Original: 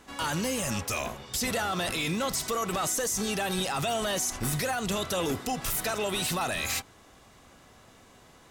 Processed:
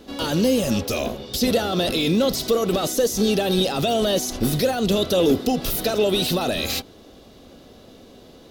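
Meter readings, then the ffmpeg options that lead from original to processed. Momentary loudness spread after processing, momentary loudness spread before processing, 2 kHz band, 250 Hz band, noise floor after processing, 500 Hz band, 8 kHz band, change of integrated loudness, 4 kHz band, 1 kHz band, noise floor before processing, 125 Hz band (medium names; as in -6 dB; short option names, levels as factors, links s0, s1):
4 LU, 3 LU, +1.0 dB, +12.0 dB, -47 dBFS, +12.0 dB, +0.5 dB, +8.0 dB, +8.0 dB, +3.0 dB, -56 dBFS, +8.0 dB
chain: -af "equalizer=f=125:t=o:w=1:g=-4,equalizer=f=250:t=o:w=1:g=5,equalizer=f=500:t=o:w=1:g=6,equalizer=f=1000:t=o:w=1:g=-9,equalizer=f=2000:t=o:w=1:g=-9,equalizer=f=4000:t=o:w=1:g=6,equalizer=f=8000:t=o:w=1:g=-12,volume=2.66"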